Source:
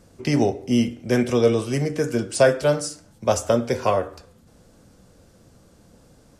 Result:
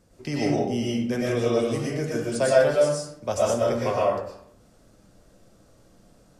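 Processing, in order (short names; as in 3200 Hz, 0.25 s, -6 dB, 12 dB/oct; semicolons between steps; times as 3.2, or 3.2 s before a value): digital reverb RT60 0.67 s, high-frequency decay 0.65×, pre-delay 75 ms, DRR -5 dB; gain -8.5 dB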